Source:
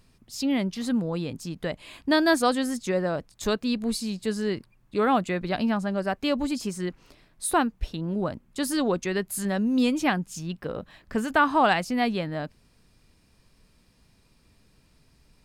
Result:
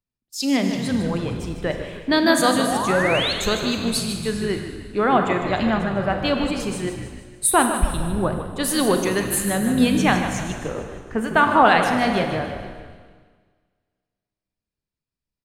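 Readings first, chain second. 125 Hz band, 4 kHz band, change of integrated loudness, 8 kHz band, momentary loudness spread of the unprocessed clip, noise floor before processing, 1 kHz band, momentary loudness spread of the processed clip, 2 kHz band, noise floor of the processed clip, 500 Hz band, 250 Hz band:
+7.0 dB, +7.5 dB, +5.5 dB, +10.0 dB, 12 LU, -62 dBFS, +6.5 dB, 12 LU, +7.0 dB, under -85 dBFS, +5.5 dB, +4.0 dB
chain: spectral noise reduction 8 dB; gate -52 dBFS, range -12 dB; harmonic-percussive split harmonic -4 dB; in parallel at -0.5 dB: peak limiter -18.5 dBFS, peak gain reduction 8.5 dB; on the sum: painted sound rise, 2.66–3.33 s, 630–4500 Hz -27 dBFS; on a send: frequency-shifting echo 153 ms, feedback 59%, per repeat -56 Hz, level -9 dB; on the sum: Schroeder reverb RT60 2.2 s, combs from 32 ms, DRR 5 dB; three bands expanded up and down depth 40%; trim +1.5 dB

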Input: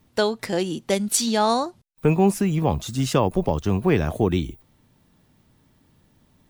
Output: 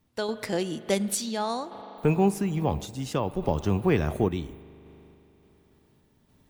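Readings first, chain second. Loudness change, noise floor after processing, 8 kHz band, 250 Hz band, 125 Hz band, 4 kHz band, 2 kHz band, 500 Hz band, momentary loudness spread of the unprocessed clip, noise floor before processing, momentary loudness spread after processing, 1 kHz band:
-5.0 dB, -64 dBFS, -7.5 dB, -5.0 dB, -4.5 dB, -7.5 dB, -5.0 dB, -5.0 dB, 6 LU, -62 dBFS, 9 LU, -6.5 dB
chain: spring tank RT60 3.4 s, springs 40 ms, chirp 75 ms, DRR 14.5 dB; random-step tremolo; trim -3 dB

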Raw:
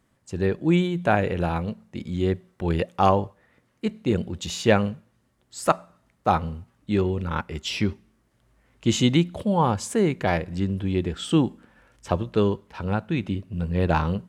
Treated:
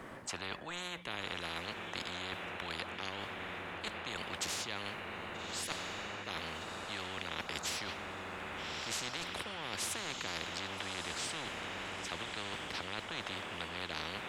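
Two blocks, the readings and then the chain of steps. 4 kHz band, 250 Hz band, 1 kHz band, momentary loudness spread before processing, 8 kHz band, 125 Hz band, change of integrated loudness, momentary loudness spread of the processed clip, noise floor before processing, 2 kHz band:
-4.0 dB, -24.0 dB, -15.0 dB, 10 LU, -4.5 dB, -25.0 dB, -15.0 dB, 5 LU, -67 dBFS, -5.5 dB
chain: three-band isolator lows -13 dB, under 230 Hz, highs -14 dB, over 2.9 kHz; reverse; compression 6:1, threshold -33 dBFS, peak gain reduction 18 dB; reverse; echo that smears into a reverb 1261 ms, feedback 52%, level -15.5 dB; spectrum-flattening compressor 10:1; trim -2 dB

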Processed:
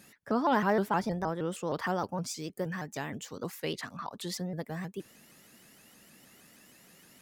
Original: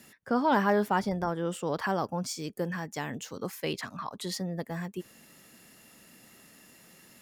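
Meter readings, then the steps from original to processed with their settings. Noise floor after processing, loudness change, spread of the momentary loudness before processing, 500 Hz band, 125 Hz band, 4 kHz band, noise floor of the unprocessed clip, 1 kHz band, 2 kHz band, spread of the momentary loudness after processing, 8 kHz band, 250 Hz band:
-59 dBFS, -2.0 dB, 12 LU, -2.0 dB, -1.5 dB, -2.5 dB, -57 dBFS, -2.0 dB, -2.5 dB, 12 LU, -1.5 dB, -2.0 dB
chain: vibrato with a chosen wave saw up 6.4 Hz, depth 160 cents; trim -2 dB

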